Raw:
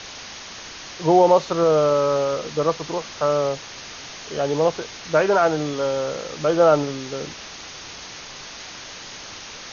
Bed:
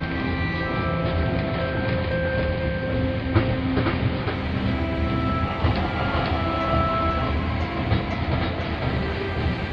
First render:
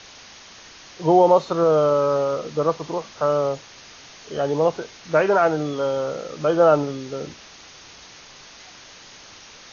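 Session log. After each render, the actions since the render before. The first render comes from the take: noise print and reduce 7 dB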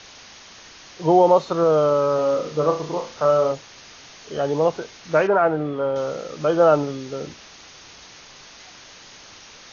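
2.15–3.52 flutter echo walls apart 5.6 m, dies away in 0.33 s; 5.27–5.96 LPF 2100 Hz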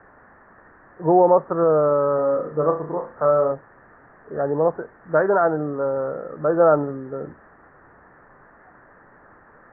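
Chebyshev low-pass 1800 Hz, order 6; notches 50/100 Hz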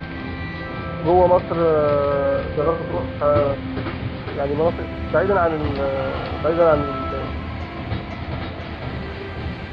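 add bed -4 dB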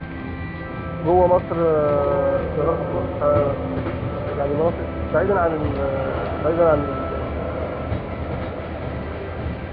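air absorption 340 m; diffused feedback echo 0.942 s, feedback 67%, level -11 dB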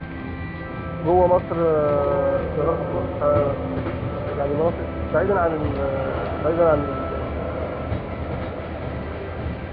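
gain -1 dB

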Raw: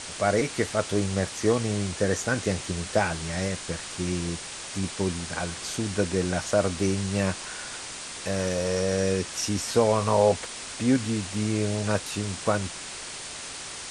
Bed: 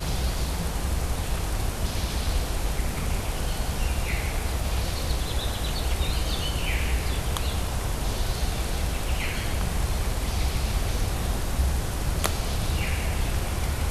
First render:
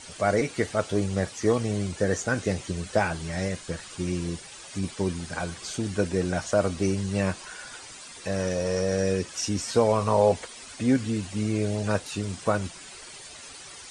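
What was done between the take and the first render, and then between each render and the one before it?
denoiser 11 dB, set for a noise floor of -38 dBFS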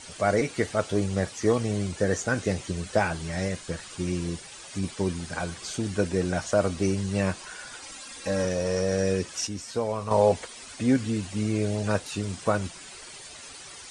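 7.82–8.45 comb 3.7 ms, depth 69%; 9.47–10.11 gain -7 dB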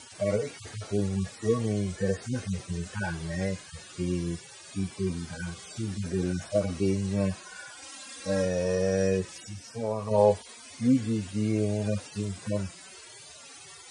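median-filter separation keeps harmonic; HPF 70 Hz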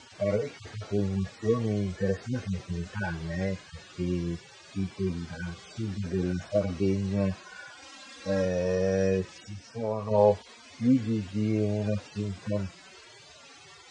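Bessel low-pass 4600 Hz, order 8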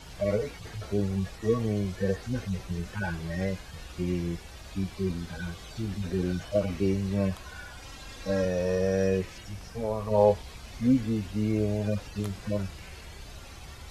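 add bed -19 dB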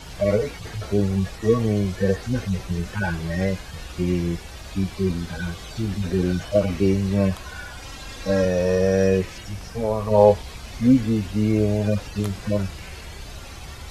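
gain +7 dB

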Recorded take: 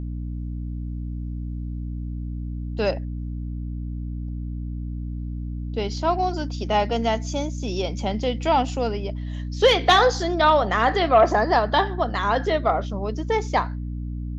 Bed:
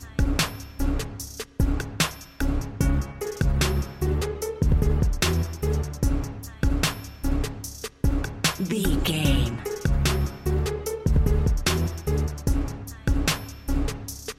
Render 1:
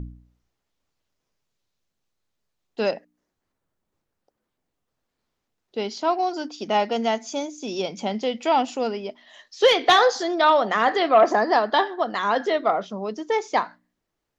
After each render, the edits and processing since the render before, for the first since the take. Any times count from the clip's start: de-hum 60 Hz, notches 5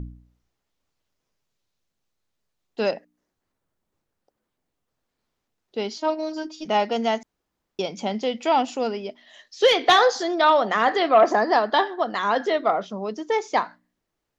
5.97–6.65 robotiser 312 Hz; 7.23–7.79 room tone; 9.02–9.73 bell 1000 Hz -5.5 dB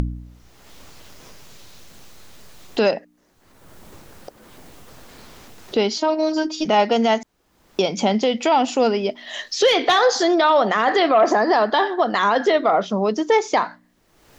in parallel at +3 dB: upward compressor, threshold -20 dBFS; on the sum: limiter -8 dBFS, peak gain reduction 9.5 dB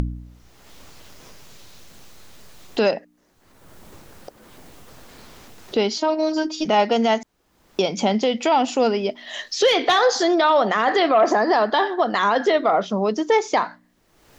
gain -1 dB

